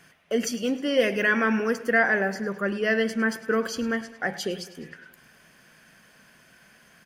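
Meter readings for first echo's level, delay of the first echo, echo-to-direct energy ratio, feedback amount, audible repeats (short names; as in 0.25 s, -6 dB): -17.0 dB, 0.104 s, -15.0 dB, 59%, 4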